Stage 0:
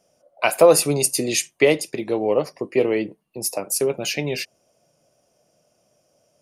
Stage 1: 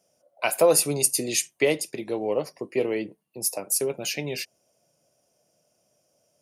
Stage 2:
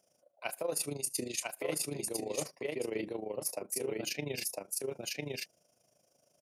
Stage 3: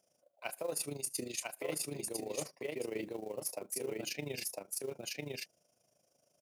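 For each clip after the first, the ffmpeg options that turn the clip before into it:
ffmpeg -i in.wav -af "highpass=62,highshelf=frequency=6400:gain=7.5,bandreject=frequency=1200:width=19,volume=-6dB" out.wav
ffmpeg -i in.wav -af "aecho=1:1:1005:0.596,tremolo=f=26:d=0.75,areverse,acompressor=threshold=-33dB:ratio=5,areverse" out.wav
ffmpeg -i in.wav -af "acrusher=bits=6:mode=log:mix=0:aa=0.000001,volume=-3dB" out.wav

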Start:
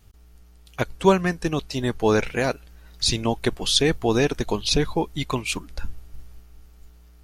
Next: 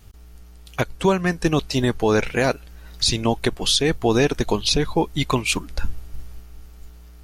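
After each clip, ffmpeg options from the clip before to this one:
ffmpeg -i in.wav -af "alimiter=limit=-14.5dB:level=0:latency=1:release=447,volume=6.5dB" out.wav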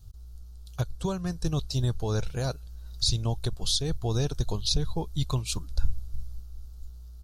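ffmpeg -i in.wav -af "firequalizer=gain_entry='entry(120,0);entry(240,-16);entry(540,-13);entry(990,-15);entry(1400,-14);entry(2000,-27);entry(3900,-6);entry(8900,-8)':delay=0.05:min_phase=1" out.wav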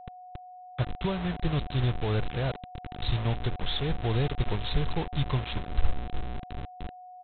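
ffmpeg -i in.wav -af "aresample=8000,acrusher=bits=5:mix=0:aa=0.000001,aresample=44100,aeval=exprs='val(0)+0.00631*sin(2*PI*730*n/s)':channel_layout=same" out.wav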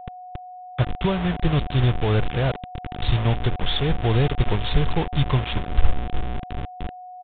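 ffmpeg -i in.wav -af "aresample=8000,aresample=44100,volume=7.5dB" out.wav

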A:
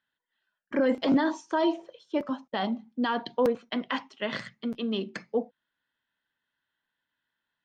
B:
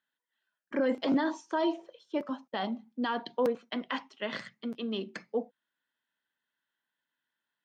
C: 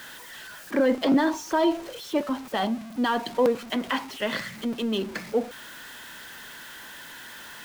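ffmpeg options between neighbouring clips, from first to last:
ffmpeg -i in.wav -af "highpass=170,volume=-3.5dB" out.wav
ffmpeg -i in.wav -af "aeval=exprs='val(0)+0.5*0.00841*sgn(val(0))':channel_layout=same,volume=6dB" out.wav

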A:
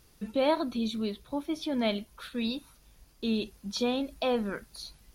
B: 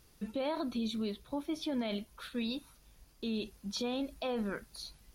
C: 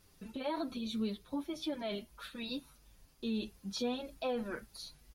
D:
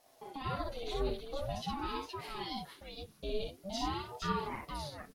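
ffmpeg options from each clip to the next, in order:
ffmpeg -i in.wav -af "alimiter=level_in=0.5dB:limit=-24dB:level=0:latency=1:release=34,volume=-0.5dB,volume=-2.5dB" out.wav
ffmpeg -i in.wav -filter_complex "[0:a]asplit=2[link_01][link_02];[link_02]adelay=6.9,afreqshift=-1.7[link_03];[link_01][link_03]amix=inputs=2:normalize=1,volume=1.5dB" out.wav
ffmpeg -i in.wav -af "aecho=1:1:59|467:0.668|0.596,aeval=exprs='val(0)*sin(2*PI*430*n/s+430*0.6/0.47*sin(2*PI*0.47*n/s))':channel_layout=same,volume=1dB" out.wav

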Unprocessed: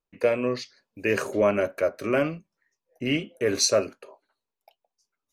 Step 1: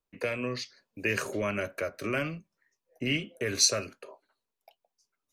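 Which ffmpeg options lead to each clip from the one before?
ffmpeg -i in.wav -filter_complex "[0:a]bandreject=frequency=840:width=20,acrossover=split=170|1400[link_01][link_02][link_03];[link_02]acompressor=threshold=-32dB:ratio=6[link_04];[link_01][link_04][link_03]amix=inputs=3:normalize=0" out.wav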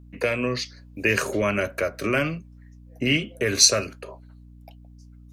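ffmpeg -i in.wav -af "aeval=exprs='val(0)+0.00224*(sin(2*PI*60*n/s)+sin(2*PI*2*60*n/s)/2+sin(2*PI*3*60*n/s)/3+sin(2*PI*4*60*n/s)/4+sin(2*PI*5*60*n/s)/5)':channel_layout=same,volume=7.5dB" out.wav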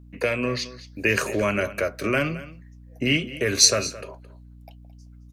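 ffmpeg -i in.wav -af "aecho=1:1:218:0.15" out.wav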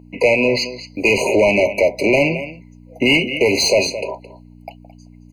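ffmpeg -i in.wav -filter_complex "[0:a]asplit=2[link_01][link_02];[link_02]highpass=frequency=720:poles=1,volume=25dB,asoftclip=type=tanh:threshold=-1.5dB[link_03];[link_01][link_03]amix=inputs=2:normalize=0,lowpass=frequency=2100:poles=1,volume=-6dB,afftfilt=real='re*eq(mod(floor(b*sr/1024/1000),2),0)':imag='im*eq(mod(floor(b*sr/1024/1000),2),0)':win_size=1024:overlap=0.75" out.wav

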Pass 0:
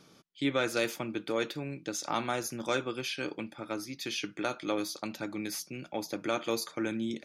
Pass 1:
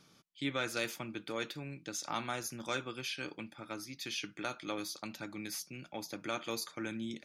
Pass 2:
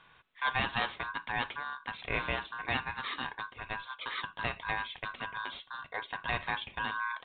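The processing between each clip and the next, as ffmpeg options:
ffmpeg -i in.wav -af "equalizer=frequency=440:width=0.72:gain=-6,volume=-3dB" out.wav
ffmpeg -i in.wav -af "aeval=exprs='val(0)*sin(2*PI*1300*n/s)':channel_layout=same,volume=7.5dB" -ar 8000 -c:a pcm_mulaw out.wav

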